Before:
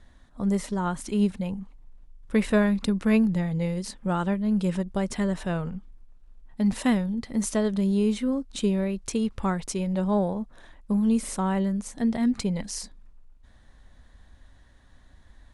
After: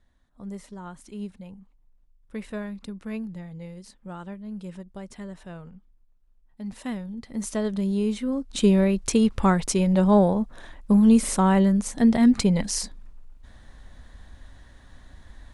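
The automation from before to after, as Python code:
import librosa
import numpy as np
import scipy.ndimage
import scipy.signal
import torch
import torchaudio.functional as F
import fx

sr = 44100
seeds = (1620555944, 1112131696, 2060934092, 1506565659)

y = fx.gain(x, sr, db=fx.line((6.61, -12.0), (7.66, -1.5), (8.27, -1.5), (8.7, 6.5)))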